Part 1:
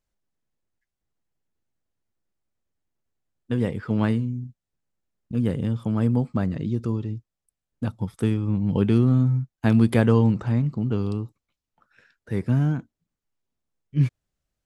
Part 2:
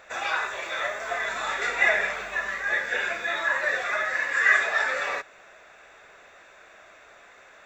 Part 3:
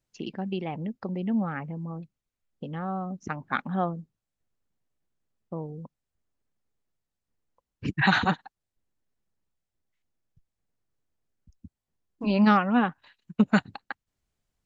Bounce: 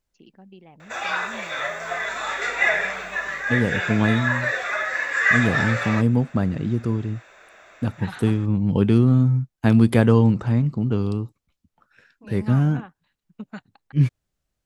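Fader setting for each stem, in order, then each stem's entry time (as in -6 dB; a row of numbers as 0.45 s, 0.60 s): +2.5 dB, +1.5 dB, -15.5 dB; 0.00 s, 0.80 s, 0.00 s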